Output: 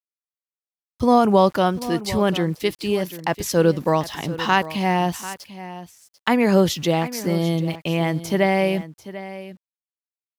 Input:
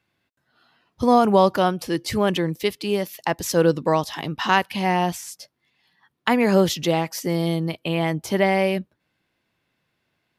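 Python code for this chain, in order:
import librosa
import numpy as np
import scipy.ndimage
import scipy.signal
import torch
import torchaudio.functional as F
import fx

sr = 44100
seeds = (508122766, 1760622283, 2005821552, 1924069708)

y = fx.low_shelf(x, sr, hz=140.0, db=5.5)
y = np.where(np.abs(y) >= 10.0 ** (-41.5 / 20.0), y, 0.0)
y = y + 10.0 ** (-15.0 / 20.0) * np.pad(y, (int(742 * sr / 1000.0), 0))[:len(y)]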